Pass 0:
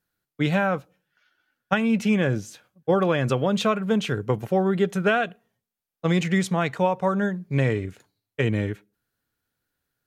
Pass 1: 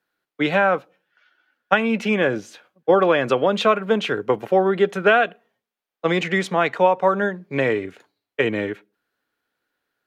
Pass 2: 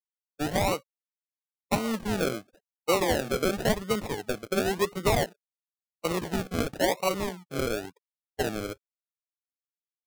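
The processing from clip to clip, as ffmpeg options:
ffmpeg -i in.wav -filter_complex "[0:a]acrossover=split=260 4100:gain=0.112 1 0.251[link_01][link_02][link_03];[link_01][link_02][link_03]amix=inputs=3:normalize=0,volume=6.5dB" out.wav
ffmpeg -i in.wav -af "afftfilt=real='re*gte(hypot(re,im),0.0224)':imag='im*gte(hypot(re,im),0.0224)':win_size=1024:overlap=0.75,acrusher=samples=37:mix=1:aa=0.000001:lfo=1:lforange=22.2:lforate=0.95,volume=-8.5dB" out.wav

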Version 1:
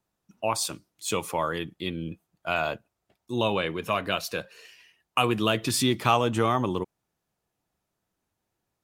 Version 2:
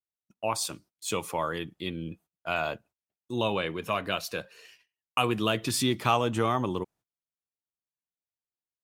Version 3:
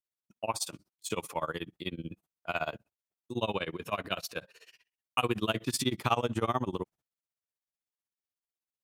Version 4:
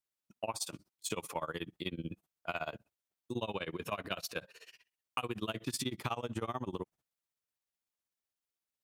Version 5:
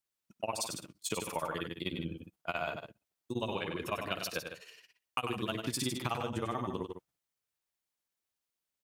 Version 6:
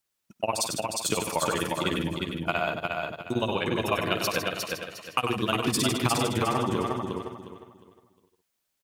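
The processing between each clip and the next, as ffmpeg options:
ffmpeg -i in.wav -af "agate=range=-25dB:threshold=-52dB:ratio=16:detection=peak,volume=-2.5dB" out.wav
ffmpeg -i in.wav -af "tremolo=f=16:d=0.95" out.wav
ffmpeg -i in.wav -af "acompressor=threshold=-34dB:ratio=6,volume=1dB" out.wav
ffmpeg -i in.wav -af "aecho=1:1:96.21|154.5:0.447|0.316,volume=1.5dB" out.wav
ffmpeg -i in.wav -af "aecho=1:1:357|714|1071|1428:0.668|0.194|0.0562|0.0163,volume=8dB" out.wav

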